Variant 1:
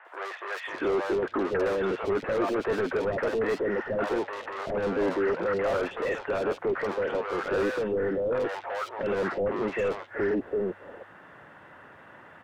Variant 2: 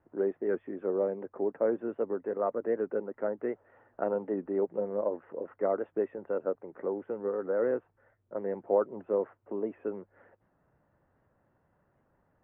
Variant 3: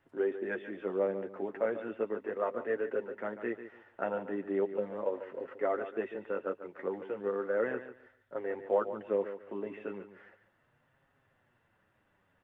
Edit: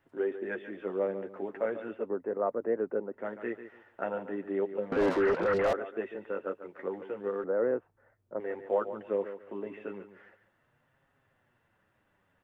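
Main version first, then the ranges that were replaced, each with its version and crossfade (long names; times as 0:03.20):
3
0:02.02–0:03.20: punch in from 2, crossfade 0.16 s
0:04.92–0:05.73: punch in from 1
0:07.44–0:08.40: punch in from 2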